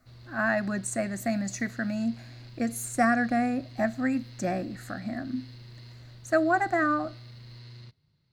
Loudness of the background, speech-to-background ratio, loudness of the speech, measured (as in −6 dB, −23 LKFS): −47.0 LKFS, 18.0 dB, −29.0 LKFS